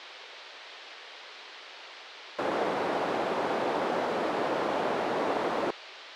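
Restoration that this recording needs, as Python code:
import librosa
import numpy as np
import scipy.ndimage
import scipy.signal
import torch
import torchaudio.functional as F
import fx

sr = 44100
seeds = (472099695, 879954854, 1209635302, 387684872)

y = fx.noise_reduce(x, sr, print_start_s=1.88, print_end_s=2.38, reduce_db=30.0)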